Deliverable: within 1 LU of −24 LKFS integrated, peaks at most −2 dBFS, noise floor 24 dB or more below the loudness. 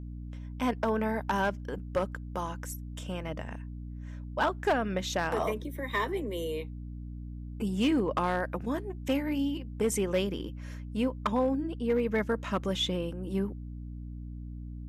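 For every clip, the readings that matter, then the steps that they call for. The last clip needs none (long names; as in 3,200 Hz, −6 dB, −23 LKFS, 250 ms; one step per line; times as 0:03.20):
share of clipped samples 0.4%; peaks flattened at −20.5 dBFS; mains hum 60 Hz; hum harmonics up to 300 Hz; level of the hum −38 dBFS; integrated loudness −31.5 LKFS; sample peak −20.5 dBFS; target loudness −24.0 LKFS
→ clipped peaks rebuilt −20.5 dBFS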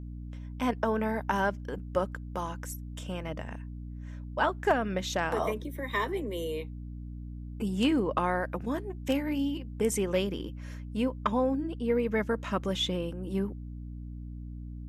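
share of clipped samples 0.0%; mains hum 60 Hz; hum harmonics up to 300 Hz; level of the hum −38 dBFS
→ hum removal 60 Hz, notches 5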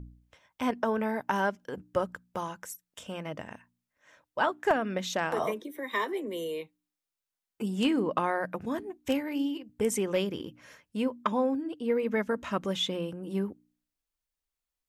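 mains hum none found; integrated loudness −31.5 LKFS; sample peak −11.5 dBFS; target loudness −24.0 LKFS
→ level +7.5 dB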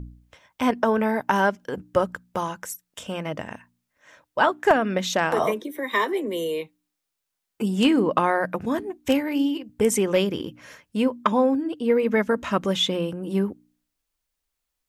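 integrated loudness −24.0 LKFS; sample peak −4.0 dBFS; background noise floor −82 dBFS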